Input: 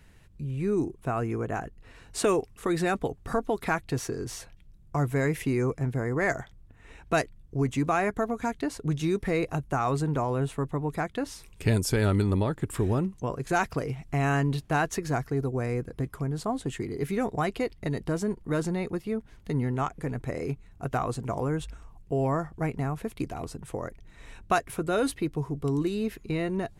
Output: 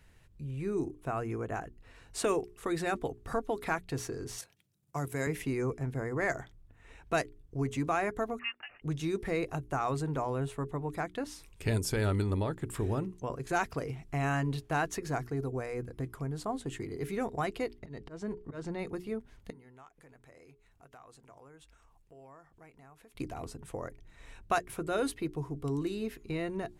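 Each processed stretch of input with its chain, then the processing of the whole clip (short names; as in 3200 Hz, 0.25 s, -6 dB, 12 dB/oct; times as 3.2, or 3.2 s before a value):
4.38–5.27 HPF 120 Hz 24 dB/oct + high shelf 4400 Hz +11 dB + level quantiser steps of 9 dB
8.39–8.82 elliptic high-pass 680 Hz, stop band 50 dB + inverted band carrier 3500 Hz
17.79–18.79 air absorption 85 m + auto swell 0.183 s
19.5–23.15 low shelf 400 Hz -10.5 dB + compressor 2.5:1, threshold -55 dBFS
whole clip: bell 190 Hz -3.5 dB 0.65 oct; notches 60/120/180/240/300/360/420 Hz; gain -4.5 dB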